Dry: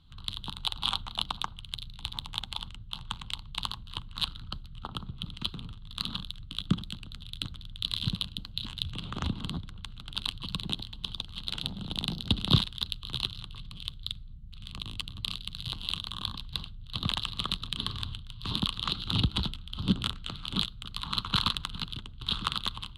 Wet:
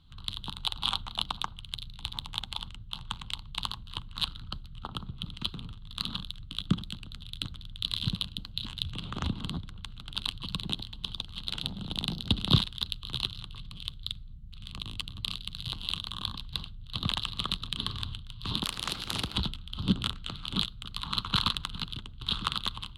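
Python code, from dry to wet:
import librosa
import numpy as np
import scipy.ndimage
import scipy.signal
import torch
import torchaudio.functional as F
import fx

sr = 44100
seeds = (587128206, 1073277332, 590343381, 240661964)

y = fx.spectral_comp(x, sr, ratio=2.0, at=(18.63, 19.36))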